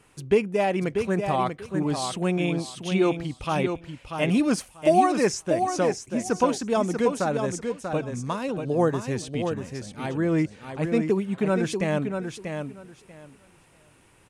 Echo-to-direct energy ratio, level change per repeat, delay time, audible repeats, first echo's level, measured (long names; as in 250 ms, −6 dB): −6.5 dB, −15.0 dB, 639 ms, 2, −6.5 dB